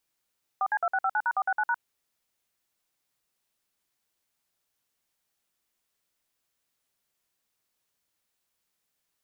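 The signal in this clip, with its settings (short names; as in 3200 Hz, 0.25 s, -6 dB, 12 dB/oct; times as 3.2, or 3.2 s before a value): DTMF "4C2659#469#", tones 54 ms, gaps 54 ms, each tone -25.5 dBFS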